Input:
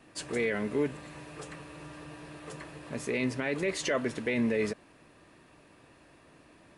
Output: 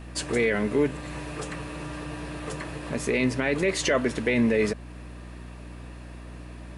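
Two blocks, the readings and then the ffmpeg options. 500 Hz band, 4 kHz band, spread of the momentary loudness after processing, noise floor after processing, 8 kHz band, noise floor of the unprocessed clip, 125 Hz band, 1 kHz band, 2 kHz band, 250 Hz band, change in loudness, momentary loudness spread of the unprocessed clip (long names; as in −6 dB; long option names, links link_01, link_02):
+6.0 dB, +7.0 dB, 19 LU, −41 dBFS, +7.0 dB, −59 dBFS, +8.0 dB, +7.0 dB, +6.5 dB, +6.5 dB, +5.0 dB, 16 LU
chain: -filter_complex "[0:a]asplit=2[link_01][link_02];[link_02]acompressor=threshold=-42dB:ratio=6,volume=-3dB[link_03];[link_01][link_03]amix=inputs=2:normalize=0,aeval=exprs='val(0)+0.00562*(sin(2*PI*60*n/s)+sin(2*PI*2*60*n/s)/2+sin(2*PI*3*60*n/s)/3+sin(2*PI*4*60*n/s)/4+sin(2*PI*5*60*n/s)/5)':channel_layout=same,volume=5dB"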